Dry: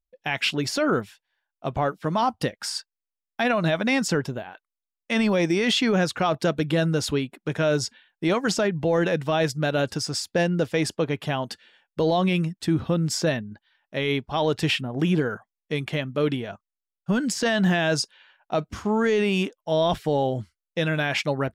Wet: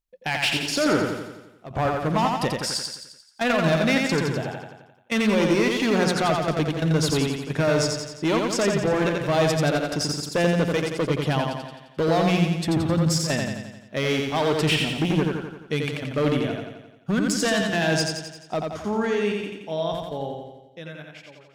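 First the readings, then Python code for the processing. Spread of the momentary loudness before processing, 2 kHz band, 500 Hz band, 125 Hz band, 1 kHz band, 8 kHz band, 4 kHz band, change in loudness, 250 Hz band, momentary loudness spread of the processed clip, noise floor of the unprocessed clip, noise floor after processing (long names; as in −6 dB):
10 LU, +1.0 dB, +0.5 dB, +1.5 dB, +1.0 dB, +2.5 dB, +1.0 dB, +1.0 dB, +1.0 dB, 13 LU, below −85 dBFS, −52 dBFS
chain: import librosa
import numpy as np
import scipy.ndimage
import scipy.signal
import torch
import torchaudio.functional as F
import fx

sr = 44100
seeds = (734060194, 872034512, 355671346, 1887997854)

y = fx.fade_out_tail(x, sr, length_s=4.7)
y = fx.clip_asym(y, sr, top_db=-22.0, bottom_db=-18.5)
y = fx.step_gate(y, sr, bpm=132, pattern='xxxxx.xxxxx.xx.', floor_db=-12.0, edge_ms=4.5)
y = fx.hum_notches(y, sr, base_hz=60, count=3)
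y = fx.echo_feedback(y, sr, ms=87, feedback_pct=56, wet_db=-3.5)
y = y * 10.0 ** (2.0 / 20.0)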